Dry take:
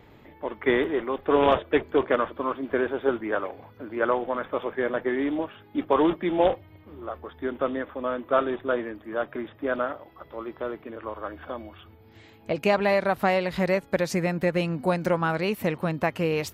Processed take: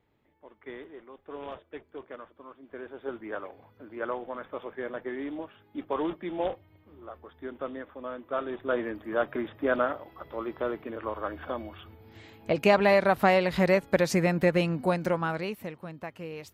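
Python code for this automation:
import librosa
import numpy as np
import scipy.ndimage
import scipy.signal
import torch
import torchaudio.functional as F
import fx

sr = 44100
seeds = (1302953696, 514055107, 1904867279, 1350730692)

y = fx.gain(x, sr, db=fx.line((2.57, -20.0), (3.26, -9.0), (8.39, -9.0), (8.9, 1.0), (14.48, 1.0), (15.4, -5.5), (15.75, -14.0)))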